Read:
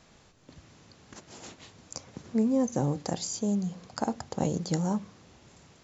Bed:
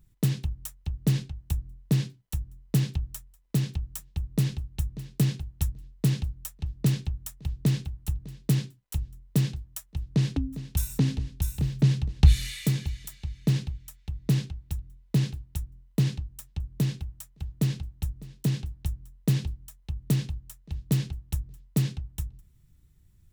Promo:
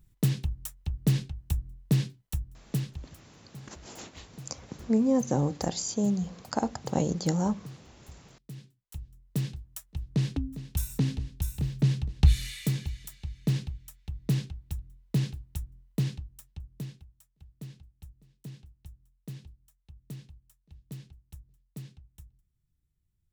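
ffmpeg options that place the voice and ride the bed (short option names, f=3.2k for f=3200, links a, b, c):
-filter_complex "[0:a]adelay=2550,volume=1.5dB[a];[1:a]volume=17dB,afade=t=out:st=2.3:d=0.88:silence=0.1,afade=t=in:st=8.51:d=1.35:silence=0.133352,afade=t=out:st=15.78:d=1.29:silence=0.188365[b];[a][b]amix=inputs=2:normalize=0"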